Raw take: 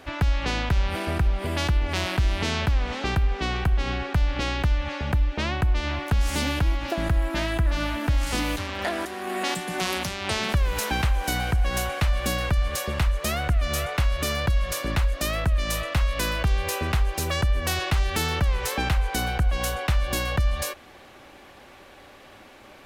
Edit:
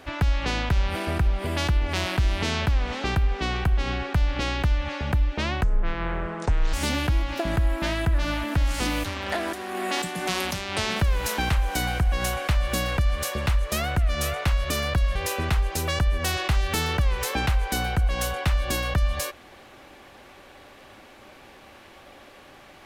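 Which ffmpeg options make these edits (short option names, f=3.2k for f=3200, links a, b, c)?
-filter_complex "[0:a]asplit=4[a][b][c][d];[a]atrim=end=5.634[e];[b]atrim=start=5.63:end=6.26,asetpts=PTS-STARTPTS,asetrate=25137,aresample=44100,atrim=end_sample=48742,asetpts=PTS-STARTPTS[f];[c]atrim=start=6.256:end=14.682[g];[d]atrim=start=16.578[h];[e][f]acrossfade=d=0.004:c1=hsin:c2=hsin[i];[i][g]acrossfade=d=0.004:c1=hsin:c2=hsin[j];[j][h]acrossfade=d=0.004:c1=hsin:c2=hsin"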